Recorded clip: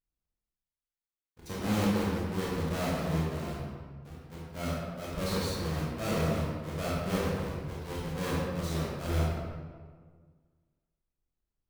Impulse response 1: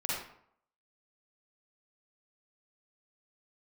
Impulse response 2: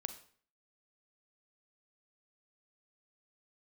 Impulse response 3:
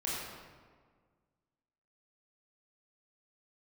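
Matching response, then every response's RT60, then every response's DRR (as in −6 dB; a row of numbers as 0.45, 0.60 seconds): 3; 0.65, 0.50, 1.7 seconds; −6.5, 9.0, −7.0 decibels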